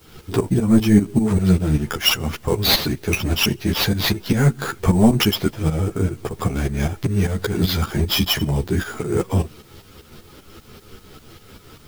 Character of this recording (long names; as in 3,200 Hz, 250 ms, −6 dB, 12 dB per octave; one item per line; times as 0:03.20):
aliases and images of a low sample rate 8,400 Hz, jitter 0%
tremolo saw up 5.1 Hz, depth 80%
a quantiser's noise floor 10 bits, dither triangular
a shimmering, thickened sound